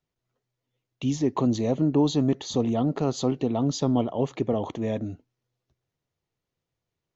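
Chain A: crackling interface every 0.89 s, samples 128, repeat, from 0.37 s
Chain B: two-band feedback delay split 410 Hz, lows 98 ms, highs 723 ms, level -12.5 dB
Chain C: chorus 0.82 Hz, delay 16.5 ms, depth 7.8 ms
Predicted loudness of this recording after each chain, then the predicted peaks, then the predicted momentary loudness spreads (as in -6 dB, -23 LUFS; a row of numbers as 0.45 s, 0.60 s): -26.0 LUFS, -25.5 LUFS, -29.0 LUFS; -10.5 dBFS, -10.0 dBFS, -13.0 dBFS; 7 LU, 14 LU, 7 LU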